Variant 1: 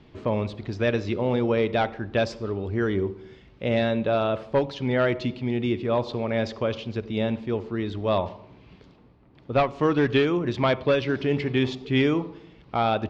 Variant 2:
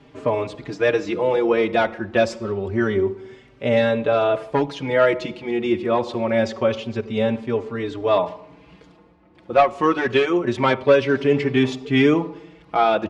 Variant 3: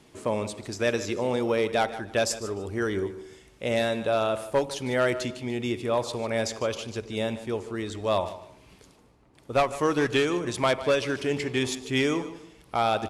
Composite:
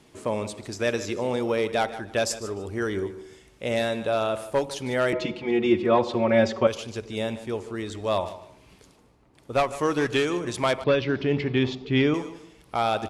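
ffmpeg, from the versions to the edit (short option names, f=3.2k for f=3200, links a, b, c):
-filter_complex "[2:a]asplit=3[a][b][c];[a]atrim=end=5.132[d];[1:a]atrim=start=5.128:end=6.672[e];[b]atrim=start=6.668:end=10.842[f];[0:a]atrim=start=10.838:end=12.142[g];[c]atrim=start=12.138[h];[d][e]acrossfade=d=0.004:c1=hsin:c2=hsin[i];[i][f]acrossfade=d=0.004:c1=hsin:c2=hsin[j];[j][g]acrossfade=d=0.004:c1=hsin:c2=hsin[k];[k][h]acrossfade=d=0.004:c1=hsin:c2=hsin"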